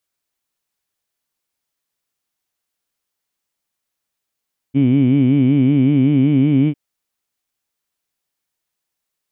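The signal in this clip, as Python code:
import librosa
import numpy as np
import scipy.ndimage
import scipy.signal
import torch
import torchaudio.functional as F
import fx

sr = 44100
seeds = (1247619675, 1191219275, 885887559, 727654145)

y = fx.vowel(sr, seeds[0], length_s=2.0, word='heed', hz=131.0, glide_st=1.5, vibrato_hz=5.3, vibrato_st=1.35)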